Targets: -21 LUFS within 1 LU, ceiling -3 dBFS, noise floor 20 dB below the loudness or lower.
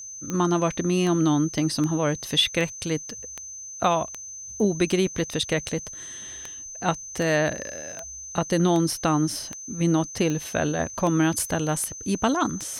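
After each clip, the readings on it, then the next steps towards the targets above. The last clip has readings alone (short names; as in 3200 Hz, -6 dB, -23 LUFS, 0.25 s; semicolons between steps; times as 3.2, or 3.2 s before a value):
clicks 17; steady tone 6200 Hz; tone level -36 dBFS; loudness -24.5 LUFS; peak -8.5 dBFS; loudness target -21.0 LUFS
-> de-click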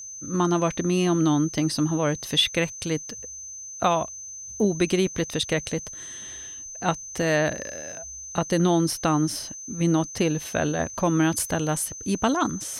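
clicks 0; steady tone 6200 Hz; tone level -36 dBFS
-> notch 6200 Hz, Q 30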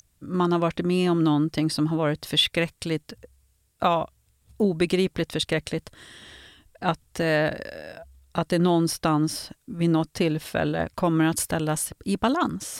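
steady tone none; loudness -25.0 LUFS; peak -9.0 dBFS; loudness target -21.0 LUFS
-> gain +4 dB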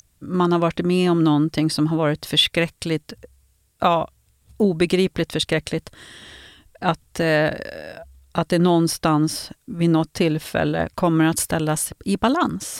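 loudness -21.0 LUFS; peak -5.0 dBFS; noise floor -63 dBFS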